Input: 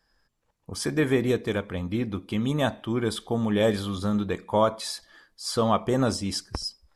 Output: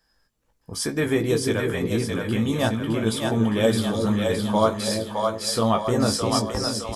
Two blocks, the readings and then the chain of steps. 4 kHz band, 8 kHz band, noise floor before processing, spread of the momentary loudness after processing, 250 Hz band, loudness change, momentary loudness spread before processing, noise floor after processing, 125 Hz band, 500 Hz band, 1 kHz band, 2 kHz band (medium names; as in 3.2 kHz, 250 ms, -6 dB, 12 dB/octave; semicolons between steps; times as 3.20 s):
+5.0 dB, +7.0 dB, -72 dBFS, 4 LU, +3.5 dB, +3.5 dB, 10 LU, -69 dBFS, +4.0 dB, +3.5 dB, +3.5 dB, +4.0 dB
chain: treble shelf 6.1 kHz +6.5 dB; doubling 18 ms -6.5 dB; on a send: two-band feedback delay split 490 Hz, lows 342 ms, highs 614 ms, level -3 dB